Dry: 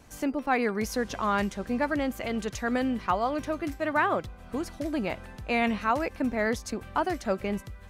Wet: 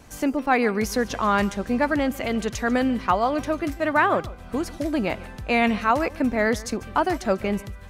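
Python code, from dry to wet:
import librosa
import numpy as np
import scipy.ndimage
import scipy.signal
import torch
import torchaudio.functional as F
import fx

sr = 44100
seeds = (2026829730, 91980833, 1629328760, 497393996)

y = x + 10.0 ** (-19.5 / 20.0) * np.pad(x, (int(145 * sr / 1000.0), 0))[:len(x)]
y = y * 10.0 ** (5.5 / 20.0)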